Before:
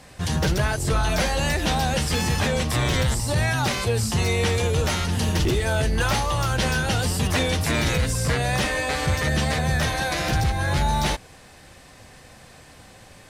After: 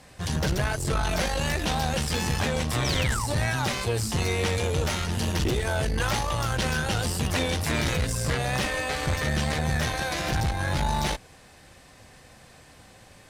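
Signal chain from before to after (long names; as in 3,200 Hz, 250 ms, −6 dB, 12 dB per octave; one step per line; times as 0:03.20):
sound drawn into the spectrogram fall, 0:02.84–0:03.27, 800–6,300 Hz −29 dBFS
tube saturation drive 17 dB, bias 0.7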